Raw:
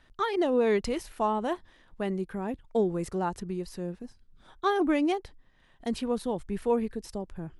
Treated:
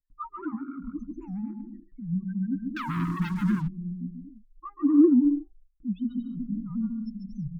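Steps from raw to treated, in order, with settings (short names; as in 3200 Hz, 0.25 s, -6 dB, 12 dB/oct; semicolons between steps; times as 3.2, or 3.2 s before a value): rattling part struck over -37 dBFS, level -30 dBFS; loudest bins only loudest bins 2; gate with hold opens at -57 dBFS; bouncing-ball echo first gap 0.14 s, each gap 0.65×, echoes 5; 2.77–3.68 sample leveller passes 3; notches 50/100/150/200 Hz; soft clip -16 dBFS, distortion -26 dB; Chebyshev band-stop 290–980 Hz, order 5; bell 330 Hz +11.5 dB 1.7 oct; comb 6.4 ms, depth 42%; record warp 78 rpm, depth 250 cents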